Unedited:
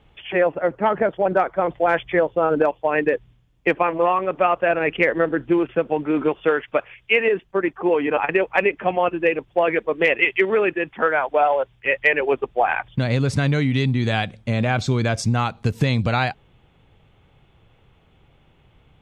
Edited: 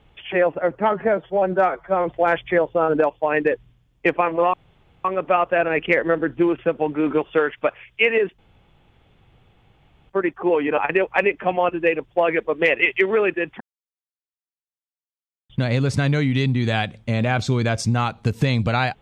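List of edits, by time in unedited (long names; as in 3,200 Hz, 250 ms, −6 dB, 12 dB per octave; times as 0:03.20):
0:00.92–0:01.69: time-stretch 1.5×
0:04.15: splice in room tone 0.51 s
0:07.49: splice in room tone 1.71 s
0:11.00–0:12.89: silence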